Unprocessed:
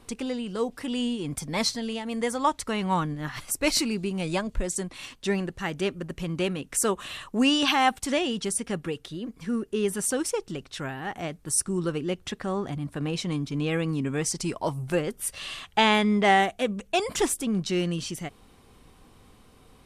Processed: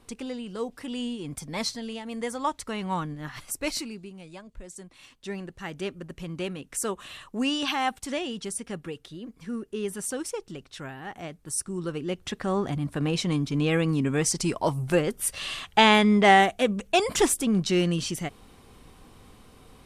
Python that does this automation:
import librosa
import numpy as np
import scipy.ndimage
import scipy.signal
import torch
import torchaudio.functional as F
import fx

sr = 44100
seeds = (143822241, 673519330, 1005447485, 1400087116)

y = fx.gain(x, sr, db=fx.line((3.58, -4.0), (4.31, -17.0), (5.76, -5.0), (11.73, -5.0), (12.57, 3.0)))